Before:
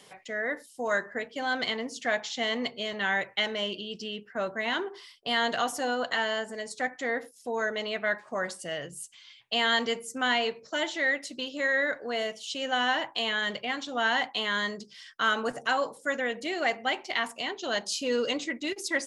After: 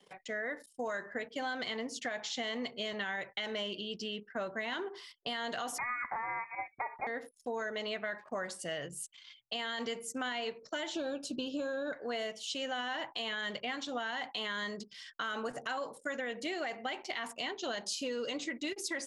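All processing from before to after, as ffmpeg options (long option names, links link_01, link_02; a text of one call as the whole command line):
ffmpeg -i in.wav -filter_complex "[0:a]asettb=1/sr,asplit=3[link_01][link_02][link_03];[link_01]atrim=end=5.784[link_04];[link_02]atrim=start=5.78:end=7.07,asetpts=PTS-STARTPTS,afade=type=in:duration=0.004:curve=qsin,afade=type=out:start_time=1.286:duration=0.004:curve=qsin,highpass=220,tiltshelf=frequency=810:gain=-9,lowpass=frequency=2300:width_type=q:width=0.5098,lowpass=frequency=2300:width_type=q:width=0.6013,lowpass=frequency=2300:width_type=q:width=0.9,lowpass=frequency=2300:width_type=q:width=2.563,afreqshift=-2700[link_05];[link_03]atrim=start=7.066[link_06];[link_04][link_05]acrossfade=duration=0.004:curve1=hsin:curve2=qsin[link_07];[link_07][link_06]acrossfade=duration=0.004:curve1=qsin:curve2=hsin,asettb=1/sr,asplit=3[link_08][link_09][link_10];[link_08]atrim=end=10.954[link_11];[link_09]atrim=start=10.95:end=11.93,asetpts=PTS-STARTPTS,afade=type=in:duration=0.004:curve=qsin,afade=type=out:start_time=0.976:duration=0.004:curve=qsin,asuperstop=centerf=2000:order=8:qfactor=2.8,lowshelf=frequency=420:gain=11[link_12];[link_10]atrim=start=11.926[link_13];[link_11][link_12]acrossfade=duration=0.004:curve1=hsin:curve2=qsin[link_14];[link_14][link_13]acrossfade=duration=0.004:curve1=qsin:curve2=hsin,anlmdn=0.00158,alimiter=limit=-21.5dB:level=0:latency=1:release=35,acompressor=threshold=-32dB:ratio=6,volume=-1.5dB" out.wav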